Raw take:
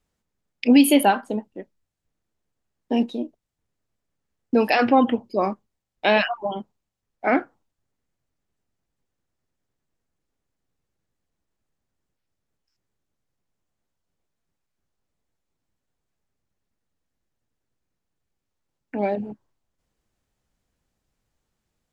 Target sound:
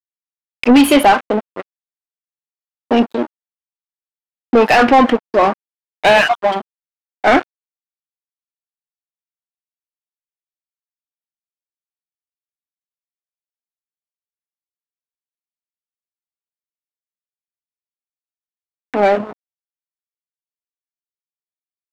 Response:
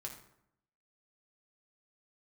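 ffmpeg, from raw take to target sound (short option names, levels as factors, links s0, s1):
-filter_complex "[0:a]aeval=exprs='sgn(val(0))*max(abs(val(0))-0.0188,0)':c=same,asplit=2[s0][s1];[s1]highpass=f=720:p=1,volume=14.1,asoftclip=type=tanh:threshold=0.668[s2];[s0][s2]amix=inputs=2:normalize=0,lowpass=f=2100:p=1,volume=0.501,volume=1.41"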